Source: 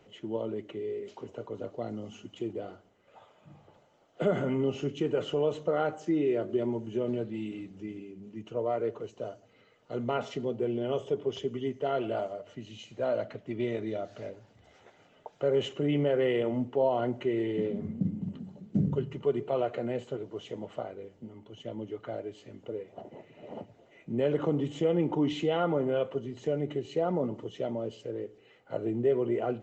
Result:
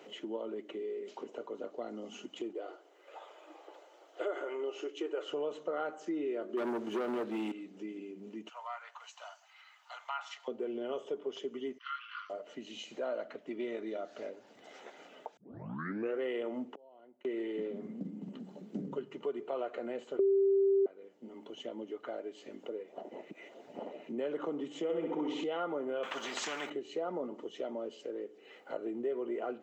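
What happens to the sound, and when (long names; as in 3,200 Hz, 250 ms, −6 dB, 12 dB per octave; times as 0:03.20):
0:02.53–0:05.30: linear-phase brick-wall high-pass 290 Hz
0:06.57–0:07.52: leveller curve on the samples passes 3
0:08.49–0:10.48: Butterworth high-pass 820 Hz 48 dB per octave
0:11.78–0:12.30: linear-phase brick-wall band-pass 1,000–6,100 Hz
0:15.37: tape start 0.82 s
0:16.72–0:17.25: gate with flip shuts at −32 dBFS, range −35 dB
0:20.19–0:20.86: beep over 392 Hz −9.5 dBFS
0:23.31–0:24.09: reverse
0:24.83–0:25.44: flutter between parallel walls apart 11.2 metres, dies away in 0.99 s
0:26.03–0:26.70: every bin compressed towards the loudest bin 4 to 1
whole clip: high-pass filter 240 Hz 24 dB per octave; dynamic equaliser 1,300 Hz, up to +5 dB, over −50 dBFS, Q 1.8; downward compressor 2 to 1, threshold −53 dBFS; level +7 dB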